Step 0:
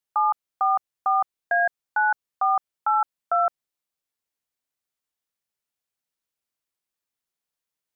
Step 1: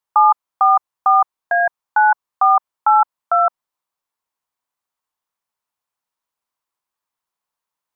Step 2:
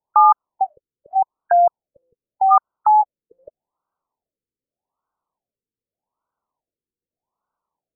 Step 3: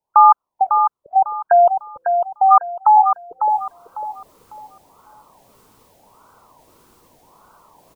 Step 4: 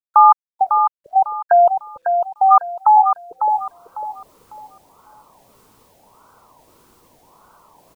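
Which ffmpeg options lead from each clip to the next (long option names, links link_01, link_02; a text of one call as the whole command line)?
ffmpeg -i in.wav -af "equalizer=frequency=1000:width_type=o:width=0.89:gain=13.5" out.wav
ffmpeg -i in.wav -af "alimiter=limit=-10.5dB:level=0:latency=1:release=73,afftfilt=real='re*lt(b*sr/1024,490*pow(1600/490,0.5+0.5*sin(2*PI*0.83*pts/sr)))':imag='im*lt(b*sr/1024,490*pow(1600/490,0.5+0.5*sin(2*PI*0.83*pts/sr)))':win_size=1024:overlap=0.75,volume=6.5dB" out.wav
ffmpeg -i in.wav -af "areverse,acompressor=mode=upward:threshold=-30dB:ratio=2.5,areverse,aecho=1:1:550|1100|1650|2200:0.473|0.137|0.0398|0.0115,volume=2.5dB" out.wav
ffmpeg -i in.wav -af "acrusher=bits=10:mix=0:aa=0.000001" out.wav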